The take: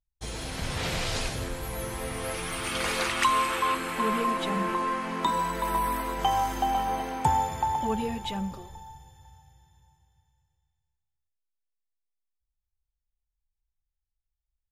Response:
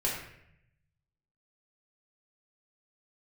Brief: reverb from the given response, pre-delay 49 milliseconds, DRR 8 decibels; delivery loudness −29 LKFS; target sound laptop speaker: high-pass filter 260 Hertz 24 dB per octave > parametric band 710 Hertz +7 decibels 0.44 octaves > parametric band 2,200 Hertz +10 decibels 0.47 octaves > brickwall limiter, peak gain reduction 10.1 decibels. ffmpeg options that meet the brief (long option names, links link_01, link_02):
-filter_complex "[0:a]asplit=2[link_01][link_02];[1:a]atrim=start_sample=2205,adelay=49[link_03];[link_02][link_03]afir=irnorm=-1:irlink=0,volume=-15dB[link_04];[link_01][link_04]amix=inputs=2:normalize=0,highpass=frequency=260:width=0.5412,highpass=frequency=260:width=1.3066,equalizer=frequency=710:width_type=o:width=0.44:gain=7,equalizer=frequency=2200:width_type=o:width=0.47:gain=10,volume=-1.5dB,alimiter=limit=-20dB:level=0:latency=1"